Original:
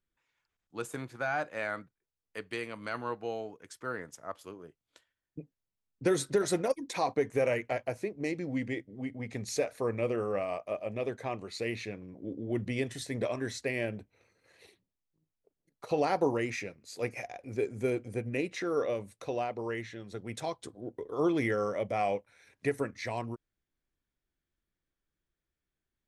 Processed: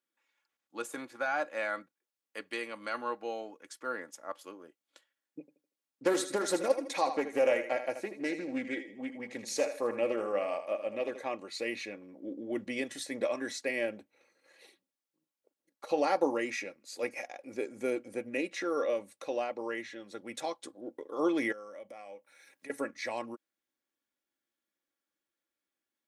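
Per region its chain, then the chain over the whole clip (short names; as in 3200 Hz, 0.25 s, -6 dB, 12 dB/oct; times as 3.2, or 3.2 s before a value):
5.4–11.2 thinning echo 79 ms, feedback 35%, high-pass 170 Hz, level -10 dB + Doppler distortion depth 0.25 ms
21.52–22.7 HPF 41 Hz + high shelf 10000 Hz +11.5 dB + compressor 3:1, threshold -50 dBFS
whole clip: HPF 310 Hz 12 dB/oct; comb 3.6 ms, depth 49%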